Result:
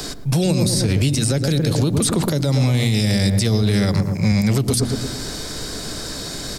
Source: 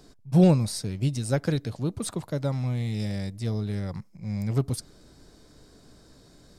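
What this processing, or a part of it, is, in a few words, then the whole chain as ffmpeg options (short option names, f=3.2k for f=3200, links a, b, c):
mastering chain: -filter_complex "[0:a]asettb=1/sr,asplit=3[a][b][c];[a]atrim=end=3.624[d];[b]atrim=start=3.62:end=4.32,asetpts=PTS-STARTPTS,afade=t=in:d=0.004:c=qsin,afade=t=out:st=0.696:d=0.004:c=qsin,highpass=78[e];[c]atrim=start=4.316[f];[d][e]acrossfade=d=0.004:c1=hsin:c2=qsin[g];[g][f]acrossfade=d=0.004:c1=qsin:c2=hsin,equalizer=f=980:t=o:w=0.77:g=-1.5,asplit=2[h][i];[i]adelay=113,lowpass=f=910:p=1,volume=-9dB,asplit=2[j][k];[k]adelay=113,lowpass=f=910:p=1,volume=0.53,asplit=2[l][m];[m]adelay=113,lowpass=f=910:p=1,volume=0.53,asplit=2[n][o];[o]adelay=113,lowpass=f=910:p=1,volume=0.53,asplit=2[p][q];[q]adelay=113,lowpass=f=910:p=1,volume=0.53,asplit=2[r][s];[s]adelay=113,lowpass=f=910:p=1,volume=0.53[t];[h][j][l][n][p][r][t]amix=inputs=7:normalize=0,bandreject=f=59.85:t=h:w=4,bandreject=f=119.7:t=h:w=4,bandreject=f=179.55:t=h:w=4,bandreject=f=239.4:t=h:w=4,bandreject=f=299.25:t=h:w=4,acrossover=split=230|530|2900|6800[u][v][w][x][y];[u]acompressor=threshold=-28dB:ratio=4[z];[v]acompressor=threshold=-32dB:ratio=4[aa];[w]acompressor=threshold=-49dB:ratio=4[ab];[x]acompressor=threshold=-48dB:ratio=4[ac];[y]acompressor=threshold=-47dB:ratio=4[ad];[z][aa][ab][ac][ad]amix=inputs=5:normalize=0,acompressor=threshold=-34dB:ratio=2,tiltshelf=f=970:g=-5,alimiter=level_in=34.5dB:limit=-1dB:release=50:level=0:latency=1,volume=-8.5dB"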